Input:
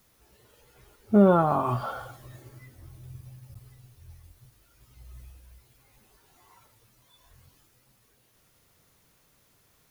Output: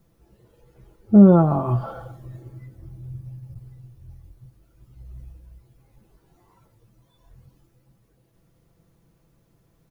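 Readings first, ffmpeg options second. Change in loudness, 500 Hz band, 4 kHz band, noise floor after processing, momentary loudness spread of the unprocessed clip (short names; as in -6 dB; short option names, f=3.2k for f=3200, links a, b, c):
+7.0 dB, +2.0 dB, n/a, -64 dBFS, 17 LU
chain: -af "tiltshelf=f=760:g=9.5,aecho=1:1:6:0.46,volume=-1dB"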